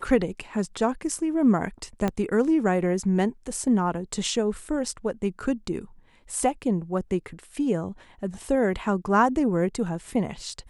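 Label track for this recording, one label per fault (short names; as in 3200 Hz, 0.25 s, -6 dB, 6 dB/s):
2.080000	2.080000	pop -13 dBFS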